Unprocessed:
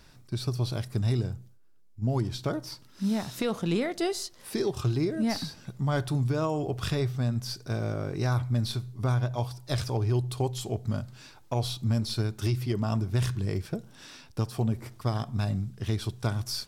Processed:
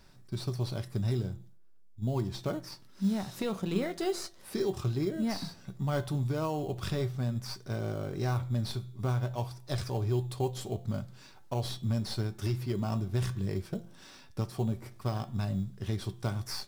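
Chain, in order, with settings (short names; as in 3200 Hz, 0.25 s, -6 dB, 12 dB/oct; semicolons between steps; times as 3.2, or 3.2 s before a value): resonator 190 Hz, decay 0.16 s, harmonics all, mix 60%; de-hum 171.6 Hz, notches 23; in parallel at -10 dB: sample-rate reducer 3600 Hz, jitter 0%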